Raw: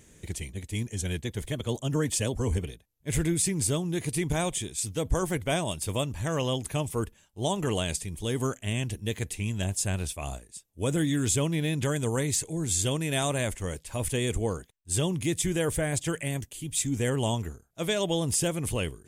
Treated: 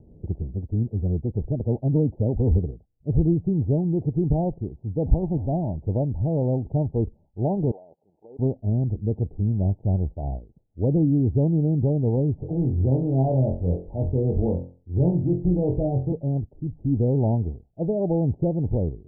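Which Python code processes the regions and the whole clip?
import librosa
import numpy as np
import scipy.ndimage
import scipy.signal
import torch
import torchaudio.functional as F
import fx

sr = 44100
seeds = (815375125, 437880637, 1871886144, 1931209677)

y = fx.chain(x, sr, fx.delta_mod(bps=64000, step_db=-30.5),
    fx.peak_eq(hz=470.0, db=-7.5, octaves=0.66), at=(5.06, 5.76))
y = fx.chain(y, sr, fx.law_mismatch(coded='mu'),
    fx.highpass(hz=890.0, slope=12),
    fx.level_steps(step_db=14), at=(7.71, 8.39))
y = fx.chain(y, sr, fx.transient(attack_db=-9, sustain_db=-4),
    fx.room_flutter(wall_m=3.9, rt60_s=0.34),
    fx.band_squash(depth_pct=40), at=(12.38, 16.12))
y = scipy.signal.sosfilt(scipy.signal.butter(16, 860.0, 'lowpass', fs=sr, output='sos'), y)
y = fx.low_shelf(y, sr, hz=420.0, db=9.0)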